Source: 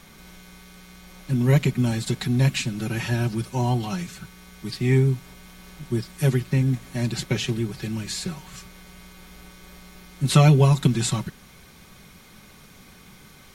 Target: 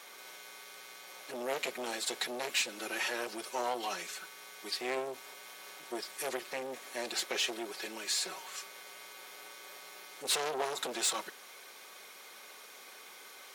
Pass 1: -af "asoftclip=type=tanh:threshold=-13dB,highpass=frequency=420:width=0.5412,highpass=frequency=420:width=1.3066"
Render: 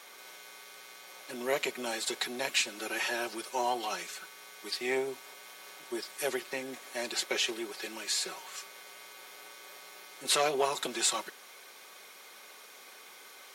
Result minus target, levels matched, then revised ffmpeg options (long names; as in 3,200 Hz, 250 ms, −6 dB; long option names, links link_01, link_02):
soft clipping: distortion −9 dB
-af "asoftclip=type=tanh:threshold=-23.5dB,highpass=frequency=420:width=0.5412,highpass=frequency=420:width=1.3066"